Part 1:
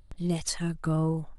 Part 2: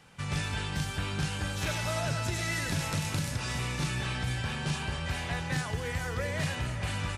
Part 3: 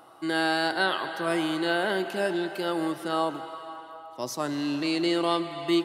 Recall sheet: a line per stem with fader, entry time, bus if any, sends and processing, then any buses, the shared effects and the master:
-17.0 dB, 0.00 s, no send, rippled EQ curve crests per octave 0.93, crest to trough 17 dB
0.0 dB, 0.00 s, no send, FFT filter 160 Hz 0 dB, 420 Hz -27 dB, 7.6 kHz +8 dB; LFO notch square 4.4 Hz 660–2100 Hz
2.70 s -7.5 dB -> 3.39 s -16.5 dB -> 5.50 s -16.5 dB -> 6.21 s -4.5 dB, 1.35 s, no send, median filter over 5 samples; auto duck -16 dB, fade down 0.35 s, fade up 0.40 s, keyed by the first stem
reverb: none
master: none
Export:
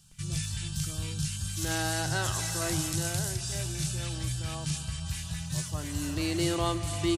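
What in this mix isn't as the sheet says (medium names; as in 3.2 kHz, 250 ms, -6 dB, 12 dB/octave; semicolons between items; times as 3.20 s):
stem 1: missing rippled EQ curve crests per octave 0.93, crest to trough 17 dB; stem 3: missing median filter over 5 samples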